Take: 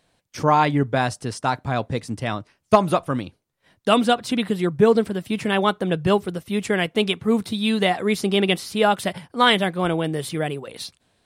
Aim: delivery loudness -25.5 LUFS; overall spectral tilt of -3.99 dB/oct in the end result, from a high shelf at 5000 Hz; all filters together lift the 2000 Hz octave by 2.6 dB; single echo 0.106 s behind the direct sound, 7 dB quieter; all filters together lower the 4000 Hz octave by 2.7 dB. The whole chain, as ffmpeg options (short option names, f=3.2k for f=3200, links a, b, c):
-af "equalizer=f=2k:t=o:g=4.5,equalizer=f=4k:t=o:g=-8.5,highshelf=f=5k:g=6,aecho=1:1:106:0.447,volume=-5dB"